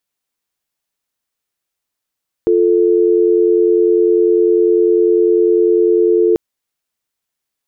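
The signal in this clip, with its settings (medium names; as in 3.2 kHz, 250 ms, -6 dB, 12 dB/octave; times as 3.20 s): call progress tone dial tone, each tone -11.5 dBFS 3.89 s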